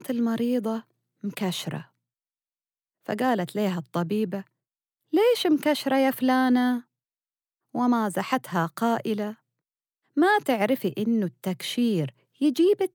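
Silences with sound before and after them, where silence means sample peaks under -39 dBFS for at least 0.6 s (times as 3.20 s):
1.82–3.06 s
4.42–5.13 s
6.81–7.75 s
9.33–10.17 s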